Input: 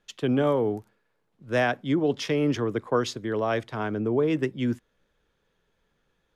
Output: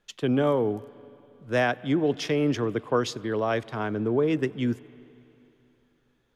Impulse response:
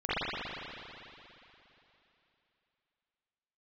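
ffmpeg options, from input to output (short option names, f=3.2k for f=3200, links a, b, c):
-filter_complex "[0:a]asplit=2[a][b];[1:a]atrim=start_sample=2205,highshelf=f=5.2k:g=10,adelay=92[c];[b][c]afir=irnorm=-1:irlink=0,volume=-34.5dB[d];[a][d]amix=inputs=2:normalize=0"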